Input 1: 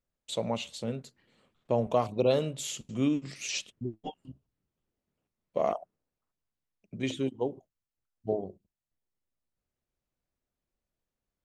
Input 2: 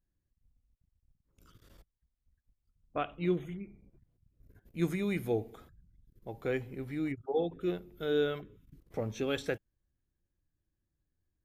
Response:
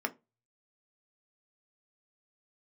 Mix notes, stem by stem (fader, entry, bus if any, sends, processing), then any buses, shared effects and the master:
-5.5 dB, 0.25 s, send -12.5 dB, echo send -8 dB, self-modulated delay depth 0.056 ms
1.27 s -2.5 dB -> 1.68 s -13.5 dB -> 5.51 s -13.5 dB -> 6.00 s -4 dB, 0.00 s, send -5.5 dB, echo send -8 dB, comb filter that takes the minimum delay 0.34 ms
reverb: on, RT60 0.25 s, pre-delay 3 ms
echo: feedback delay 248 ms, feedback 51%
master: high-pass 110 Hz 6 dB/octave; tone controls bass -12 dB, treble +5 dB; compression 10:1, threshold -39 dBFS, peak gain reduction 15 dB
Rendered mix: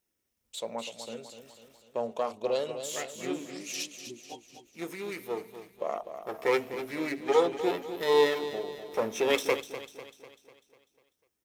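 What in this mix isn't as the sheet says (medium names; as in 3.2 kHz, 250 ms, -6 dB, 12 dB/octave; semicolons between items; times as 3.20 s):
stem 2 -2.5 dB -> +6.0 dB; master: missing compression 10:1, threshold -39 dBFS, peak gain reduction 15 dB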